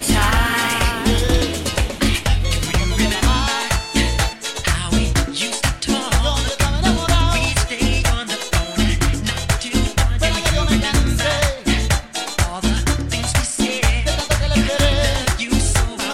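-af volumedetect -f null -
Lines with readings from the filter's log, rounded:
mean_volume: -17.6 dB
max_volume: -6.1 dB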